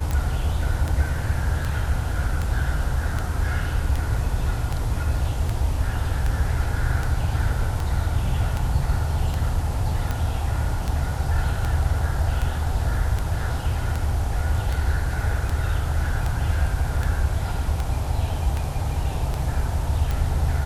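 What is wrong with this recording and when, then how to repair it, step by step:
scratch tick 78 rpm −13 dBFS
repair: click removal

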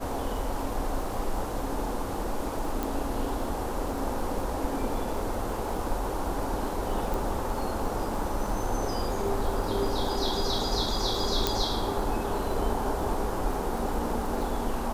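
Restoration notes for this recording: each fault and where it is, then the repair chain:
surface crackle 58 per second −36 dBFS
0:02.83: click
0:07.14: click
0:11.47: click −8 dBFS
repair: click removal

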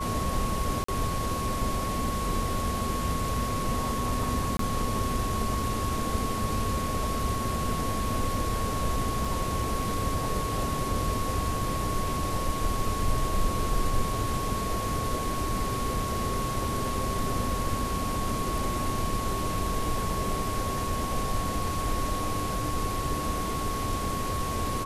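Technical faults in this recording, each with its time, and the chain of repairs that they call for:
whistle 1,100 Hz −32 dBFS
0:00.84–0:00.88: drop-out 44 ms
0:04.57–0:04.59: drop-out 23 ms
0:09.25: drop-out 3 ms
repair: notch filter 1,100 Hz, Q 30
repair the gap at 0:00.84, 44 ms
repair the gap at 0:04.57, 23 ms
repair the gap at 0:09.25, 3 ms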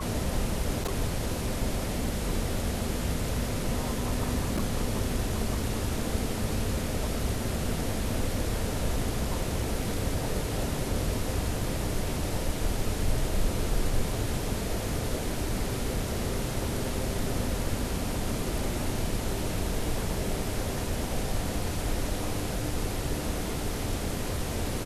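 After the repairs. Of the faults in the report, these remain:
none of them is left

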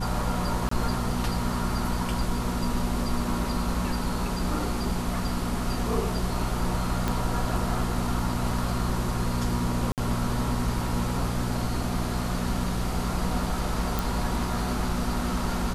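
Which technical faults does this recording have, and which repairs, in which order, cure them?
mains hum 60 Hz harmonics 3 −31 dBFS
0:00.69–0:00.71: drop-out 24 ms
0:07.08: click −12 dBFS
0:09.92–0:09.98: drop-out 58 ms
0:13.99: click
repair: click removal
hum removal 60 Hz, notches 3
repair the gap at 0:00.69, 24 ms
repair the gap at 0:09.92, 58 ms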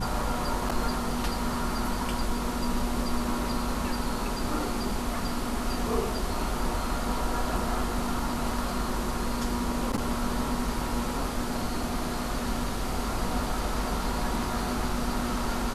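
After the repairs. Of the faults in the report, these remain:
0:07.08: click

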